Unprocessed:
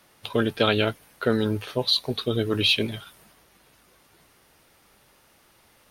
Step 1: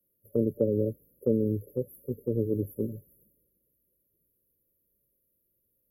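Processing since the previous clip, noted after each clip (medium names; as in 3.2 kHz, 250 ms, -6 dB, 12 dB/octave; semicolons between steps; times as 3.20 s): FFT band-reject 590–11000 Hz; three bands expanded up and down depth 40%; trim -3.5 dB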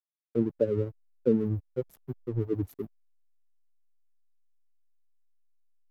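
expander on every frequency bin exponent 3; hysteresis with a dead band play -45.5 dBFS; trim +5.5 dB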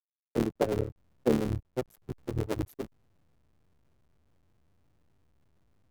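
cycle switcher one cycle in 3, muted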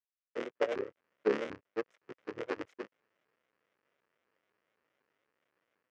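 cabinet simulation 490–5300 Hz, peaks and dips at 500 Hz +5 dB, 770 Hz -6 dB, 1.3 kHz +4 dB, 1.9 kHz +8 dB, 2.8 kHz +4 dB, 4 kHz -9 dB; level rider gain up to 5.5 dB; vibrato with a chosen wave saw up 4 Hz, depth 250 cents; trim -7 dB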